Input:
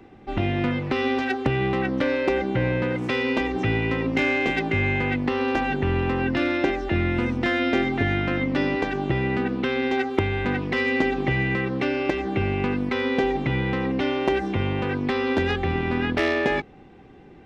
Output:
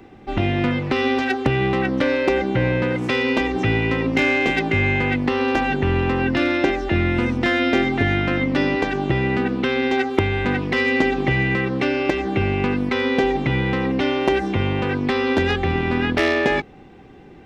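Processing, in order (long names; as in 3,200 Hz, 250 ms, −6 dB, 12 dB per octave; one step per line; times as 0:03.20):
high-shelf EQ 4,900 Hz +4.5 dB
level +3.5 dB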